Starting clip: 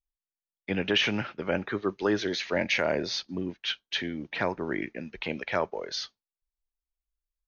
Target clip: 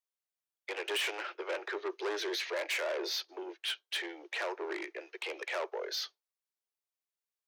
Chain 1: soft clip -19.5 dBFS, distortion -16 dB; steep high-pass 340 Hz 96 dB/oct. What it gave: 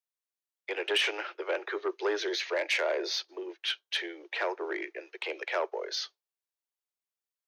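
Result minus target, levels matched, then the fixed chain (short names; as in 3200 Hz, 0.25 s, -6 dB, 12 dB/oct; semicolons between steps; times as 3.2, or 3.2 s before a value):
soft clip: distortion -9 dB
soft clip -30 dBFS, distortion -6 dB; steep high-pass 340 Hz 96 dB/oct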